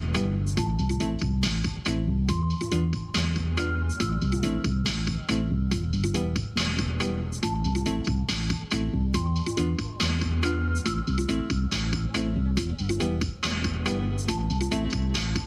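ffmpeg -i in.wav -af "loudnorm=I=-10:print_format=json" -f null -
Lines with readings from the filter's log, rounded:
"input_i" : "-27.0",
"input_tp" : "-13.3",
"input_lra" : "0.8",
"input_thresh" : "-37.0",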